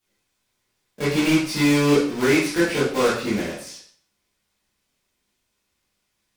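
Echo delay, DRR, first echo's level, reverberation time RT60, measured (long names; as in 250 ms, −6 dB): no echo audible, −10.0 dB, no echo audible, 0.55 s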